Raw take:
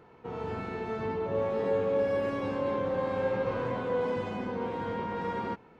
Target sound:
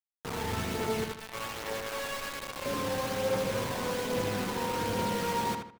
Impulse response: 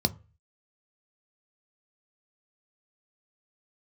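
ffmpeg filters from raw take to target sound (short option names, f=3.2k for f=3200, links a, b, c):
-filter_complex "[0:a]asettb=1/sr,asplit=3[a][b][c];[a]atrim=end=1.044[d];[b]atrim=start=1.04:end=2.66,asetpts=PTS-STARTPTS,afade=t=in:d=0.004:c=qsin,afade=t=out:st=1.616:d=0.004:c=qsin,highpass=1k[e];[c]atrim=start=2.656[f];[d][e]acrossfade=d=0.004:c1=hsin:c2=qsin[g];[g][f]acrossfade=d=0.004:c1=qsin:c2=hsin,alimiter=level_in=0.5dB:limit=-24dB:level=0:latency=1:release=155,volume=-0.5dB,acrusher=bits=5:mix=0:aa=0.000001,aphaser=in_gain=1:out_gain=1:delay=1.2:decay=0.26:speed=1.2:type=triangular,asplit=2[h][i];[i]adelay=78,lowpass=f=3.6k:p=1,volume=-5dB,asplit=2[j][k];[k]adelay=78,lowpass=f=3.6k:p=1,volume=0.34,asplit=2[l][m];[m]adelay=78,lowpass=f=3.6k:p=1,volume=0.34,asplit=2[n][o];[o]adelay=78,lowpass=f=3.6k:p=1,volume=0.34[p];[j][l][n][p]amix=inputs=4:normalize=0[q];[h][q]amix=inputs=2:normalize=0"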